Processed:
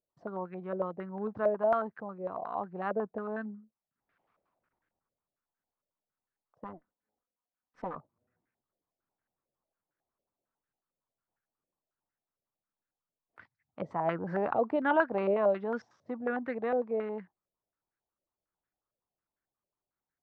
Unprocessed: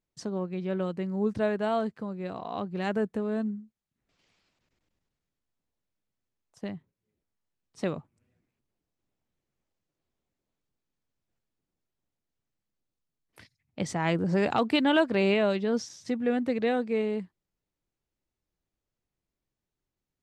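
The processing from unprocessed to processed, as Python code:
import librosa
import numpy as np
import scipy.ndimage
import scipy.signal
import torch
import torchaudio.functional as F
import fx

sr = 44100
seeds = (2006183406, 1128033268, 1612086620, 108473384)

y = fx.lower_of_two(x, sr, delay_ms=4.0, at=(6.64, 7.96))
y = fx.tilt_eq(y, sr, slope=2.0)
y = fx.filter_held_lowpass(y, sr, hz=11.0, low_hz=590.0, high_hz=1600.0)
y = F.gain(torch.from_numpy(y), -5.5).numpy()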